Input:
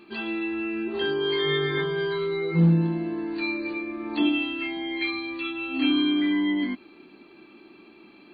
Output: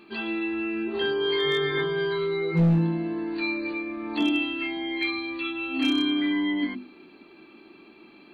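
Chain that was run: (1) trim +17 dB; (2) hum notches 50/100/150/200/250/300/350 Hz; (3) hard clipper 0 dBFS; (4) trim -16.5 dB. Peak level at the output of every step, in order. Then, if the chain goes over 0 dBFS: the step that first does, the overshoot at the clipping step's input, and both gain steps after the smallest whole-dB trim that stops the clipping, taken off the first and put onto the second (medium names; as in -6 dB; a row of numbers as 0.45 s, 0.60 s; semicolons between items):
+5.5 dBFS, +5.5 dBFS, 0.0 dBFS, -16.5 dBFS; step 1, 5.5 dB; step 1 +11 dB, step 4 -10.5 dB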